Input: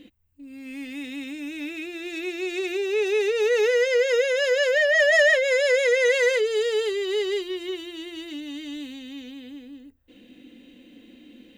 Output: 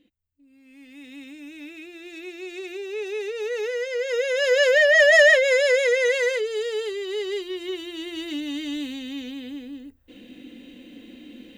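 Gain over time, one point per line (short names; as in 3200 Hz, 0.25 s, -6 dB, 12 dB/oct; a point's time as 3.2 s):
0.68 s -14.5 dB
1.16 s -7 dB
3.93 s -7 dB
4.6 s +3.5 dB
5.3 s +3.5 dB
6.48 s -3.5 dB
7.16 s -3.5 dB
8.33 s +5 dB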